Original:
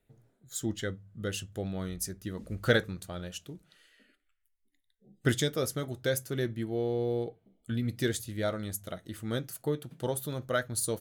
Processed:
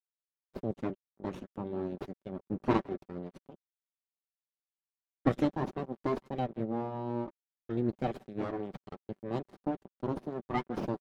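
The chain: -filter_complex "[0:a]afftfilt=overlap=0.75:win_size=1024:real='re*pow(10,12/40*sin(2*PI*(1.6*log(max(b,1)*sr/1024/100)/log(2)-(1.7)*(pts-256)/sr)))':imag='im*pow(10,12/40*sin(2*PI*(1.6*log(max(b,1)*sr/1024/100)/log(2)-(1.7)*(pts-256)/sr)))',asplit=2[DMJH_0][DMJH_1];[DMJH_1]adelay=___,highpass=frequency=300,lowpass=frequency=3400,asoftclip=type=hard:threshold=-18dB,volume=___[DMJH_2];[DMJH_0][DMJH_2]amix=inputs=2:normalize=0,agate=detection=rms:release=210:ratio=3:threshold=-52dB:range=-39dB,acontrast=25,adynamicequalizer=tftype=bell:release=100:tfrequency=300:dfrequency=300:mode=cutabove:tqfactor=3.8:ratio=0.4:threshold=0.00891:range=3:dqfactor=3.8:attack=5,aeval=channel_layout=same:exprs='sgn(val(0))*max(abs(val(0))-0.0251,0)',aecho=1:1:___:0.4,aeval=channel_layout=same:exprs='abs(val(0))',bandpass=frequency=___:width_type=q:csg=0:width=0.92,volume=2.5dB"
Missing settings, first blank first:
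160, -15dB, 5.2, 270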